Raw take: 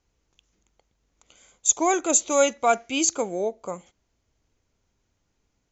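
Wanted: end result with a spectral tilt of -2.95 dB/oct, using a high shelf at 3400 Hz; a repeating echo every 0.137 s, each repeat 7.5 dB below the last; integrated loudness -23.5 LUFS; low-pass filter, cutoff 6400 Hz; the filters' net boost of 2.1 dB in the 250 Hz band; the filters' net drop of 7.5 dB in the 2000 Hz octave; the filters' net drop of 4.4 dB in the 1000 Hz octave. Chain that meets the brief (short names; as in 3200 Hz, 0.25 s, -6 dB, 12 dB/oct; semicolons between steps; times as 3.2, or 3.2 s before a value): LPF 6400 Hz; bell 250 Hz +3.5 dB; bell 1000 Hz -5.5 dB; bell 2000 Hz -7 dB; high shelf 3400 Hz -4.5 dB; feedback echo 0.137 s, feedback 42%, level -7.5 dB; gain +2 dB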